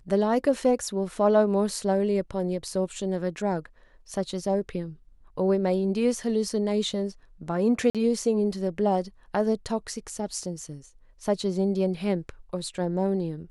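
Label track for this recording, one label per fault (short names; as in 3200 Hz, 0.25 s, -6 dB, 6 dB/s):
7.900000	7.950000	gap 47 ms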